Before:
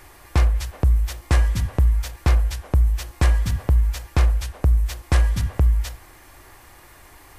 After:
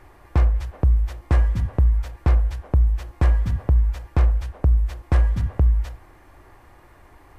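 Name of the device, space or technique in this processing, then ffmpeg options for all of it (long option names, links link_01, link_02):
through cloth: -af "highshelf=frequency=2600:gain=-17"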